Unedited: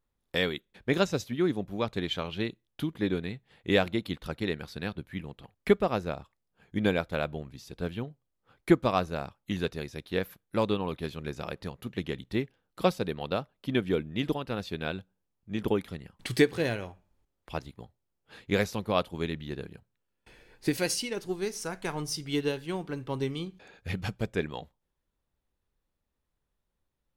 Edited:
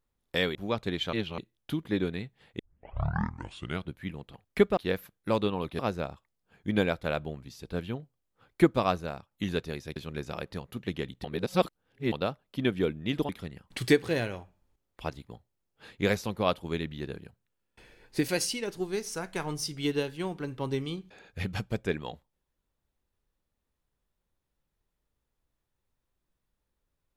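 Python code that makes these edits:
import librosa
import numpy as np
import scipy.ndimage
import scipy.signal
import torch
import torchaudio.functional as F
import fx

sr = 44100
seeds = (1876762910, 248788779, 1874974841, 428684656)

y = fx.edit(x, sr, fx.cut(start_s=0.55, length_s=1.1),
    fx.reverse_span(start_s=2.23, length_s=0.25),
    fx.tape_start(start_s=3.69, length_s=1.34),
    fx.fade_out_to(start_s=9.0, length_s=0.39, floor_db=-7.0),
    fx.move(start_s=10.04, length_s=1.02, to_s=5.87),
    fx.reverse_span(start_s=12.34, length_s=0.88),
    fx.cut(start_s=14.39, length_s=1.39), tone=tone)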